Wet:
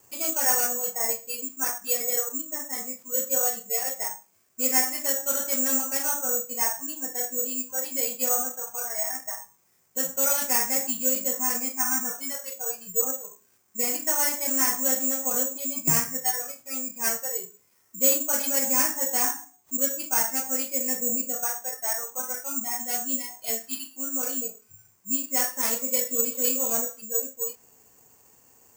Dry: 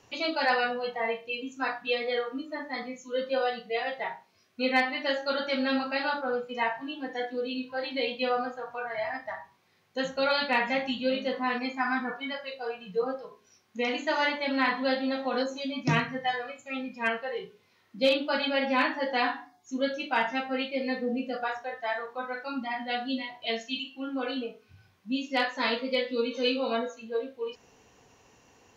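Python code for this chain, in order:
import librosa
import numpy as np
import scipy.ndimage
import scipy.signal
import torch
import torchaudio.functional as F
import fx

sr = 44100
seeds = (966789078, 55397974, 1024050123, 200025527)

y = fx.cvsd(x, sr, bps=64000)
y = scipy.signal.sosfilt(scipy.signal.butter(2, 2300.0, 'lowpass', fs=sr, output='sos'), y)
y = (np.kron(y[::6], np.eye(6)[0]) * 6)[:len(y)]
y = scipy.signal.sosfilt(scipy.signal.butter(2, 48.0, 'highpass', fs=sr, output='sos'), y)
y = y * 10.0 ** (-4.0 / 20.0)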